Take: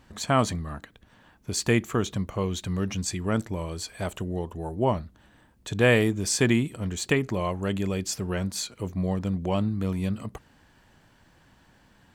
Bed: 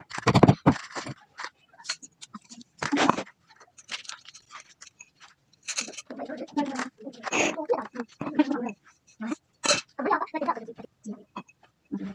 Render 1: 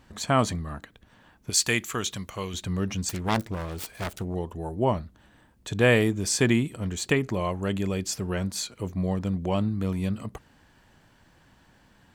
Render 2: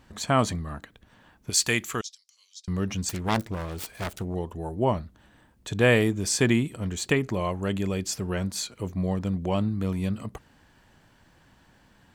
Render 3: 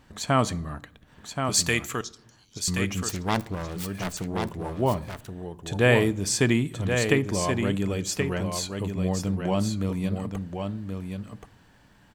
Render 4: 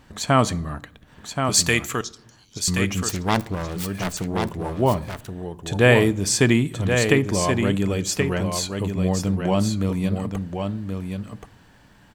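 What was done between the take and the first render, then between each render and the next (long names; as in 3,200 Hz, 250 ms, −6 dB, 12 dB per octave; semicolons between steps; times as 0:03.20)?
0:01.50–0:02.54: tilt shelving filter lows −7.5 dB, about 1,300 Hz; 0:03.09–0:04.35: phase distortion by the signal itself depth 0.83 ms
0:02.01–0:02.68: four-pole ladder band-pass 5,400 Hz, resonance 75%
single-tap delay 1,077 ms −6 dB; rectangular room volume 2,000 cubic metres, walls furnished, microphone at 0.38 metres
level +4.5 dB; brickwall limiter −2 dBFS, peak gain reduction 1.5 dB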